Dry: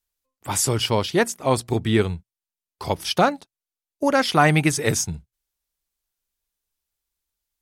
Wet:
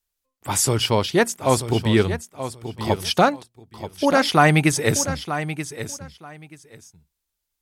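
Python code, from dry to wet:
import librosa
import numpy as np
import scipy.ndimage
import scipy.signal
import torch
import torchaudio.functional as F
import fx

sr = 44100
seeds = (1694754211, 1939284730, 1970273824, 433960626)

y = fx.echo_feedback(x, sr, ms=931, feedback_pct=18, wet_db=-11)
y = y * 10.0 ** (1.5 / 20.0)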